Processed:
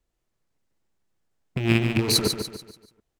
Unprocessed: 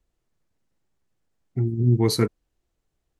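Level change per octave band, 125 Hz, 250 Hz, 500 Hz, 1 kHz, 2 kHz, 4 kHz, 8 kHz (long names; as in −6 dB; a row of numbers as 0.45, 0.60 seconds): −4.5, 0.0, −1.5, +1.0, +11.0, +8.5, +7.0 decibels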